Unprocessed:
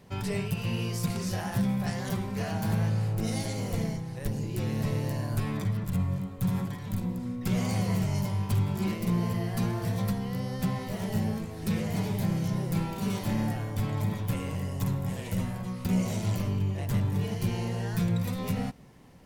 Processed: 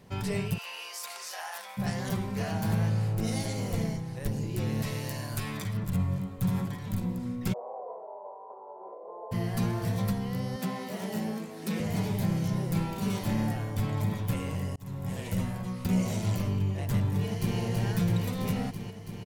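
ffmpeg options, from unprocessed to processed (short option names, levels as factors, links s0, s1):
-filter_complex "[0:a]asplit=3[s0][s1][s2];[s0]afade=t=out:st=0.57:d=0.02[s3];[s1]highpass=f=720:w=0.5412,highpass=f=720:w=1.3066,afade=t=in:st=0.57:d=0.02,afade=t=out:st=1.77:d=0.02[s4];[s2]afade=t=in:st=1.77:d=0.02[s5];[s3][s4][s5]amix=inputs=3:normalize=0,asettb=1/sr,asplit=3[s6][s7][s8];[s6]atrim=end=4.824[s9];[s7]atrim=start=4.82:end=5.74,asetpts=PTS-STARTPTS,afade=t=in:d=0.004:c=qsin,afade=t=out:st=0.916:d=0.004:c=qsin,tiltshelf=f=1200:g=-5.5[s10];[s8]atrim=start=5.736[s11];[s9][s10]acrossfade=d=0.004:c1=hsin:c2=qsin[s12];[s12][s11]acrossfade=d=0.004:c1=qsin:c2=hsin,asplit=3[s13][s14][s15];[s13]afade=t=out:st=7.52:d=0.02[s16];[s14]asuperpass=centerf=660:order=8:qfactor=1.2,afade=t=in:st=7.52:d=0.02,afade=t=out:st=9.31:d=0.02[s17];[s15]afade=t=in:st=9.31:d=0.02[s18];[s16][s17][s18]amix=inputs=3:normalize=0,asettb=1/sr,asplit=3[s19][s20][s21];[s19]atrim=end=10.564[s22];[s20]atrim=start=10.56:end=11.8,asetpts=PTS-STARTPTS,afade=t=in:d=0.004:c=qsin,afade=t=out:st=1.236:d=0.004:c=qsin,highpass=f=190:w=0.5412,highpass=f=190:w=1.3066[s23];[s21]atrim=start=11.796[s24];[s22][s23]acrossfade=d=0.004:c1=hsin:c2=qsin[s25];[s25][s24]acrossfade=d=0.004:c1=qsin:c2=hsin,asplit=2[s26][s27];[s27]afade=t=in:st=17.1:d=0.01,afade=t=out:st=17.58:d=0.01,aecho=0:1:330|660|990|1320|1650|1980|2310|2640|2970|3300|3630|3960:0.630957|0.504766|0.403813|0.32305|0.25844|0.206752|0.165402|0.132321|0.105857|0.0846857|0.0677485|0.0541988[s28];[s26][s28]amix=inputs=2:normalize=0,asplit=2[s29][s30];[s29]atrim=end=14.76,asetpts=PTS-STARTPTS,afade=t=out:st=14.756:d=0.004:c=hsin[s31];[s30]atrim=start=14.76,asetpts=PTS-STARTPTS,afade=t=in:d=0.41[s32];[s31][s32]concat=n=2:v=0:a=1"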